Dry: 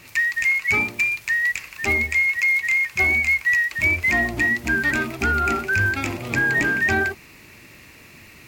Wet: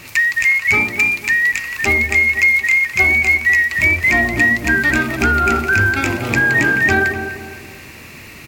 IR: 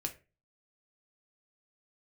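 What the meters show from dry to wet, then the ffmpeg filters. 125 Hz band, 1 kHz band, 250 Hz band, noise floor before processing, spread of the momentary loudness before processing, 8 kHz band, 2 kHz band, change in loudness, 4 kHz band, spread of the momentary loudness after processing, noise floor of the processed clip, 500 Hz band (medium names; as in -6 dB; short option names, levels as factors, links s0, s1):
+6.5 dB, +6.0 dB, +7.0 dB, -47 dBFS, 5 LU, +6.5 dB, +6.0 dB, +6.0 dB, +6.5 dB, 6 LU, -37 dBFS, +6.5 dB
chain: -filter_complex "[0:a]asplit=2[s0][s1];[s1]acompressor=threshold=0.0447:ratio=6,volume=0.944[s2];[s0][s2]amix=inputs=2:normalize=0,asplit=2[s3][s4];[s4]adelay=249,lowpass=f=1400:p=1,volume=0.422,asplit=2[s5][s6];[s6]adelay=249,lowpass=f=1400:p=1,volume=0.42,asplit=2[s7][s8];[s8]adelay=249,lowpass=f=1400:p=1,volume=0.42,asplit=2[s9][s10];[s10]adelay=249,lowpass=f=1400:p=1,volume=0.42,asplit=2[s11][s12];[s12]adelay=249,lowpass=f=1400:p=1,volume=0.42[s13];[s3][s5][s7][s9][s11][s13]amix=inputs=6:normalize=0,volume=1.41"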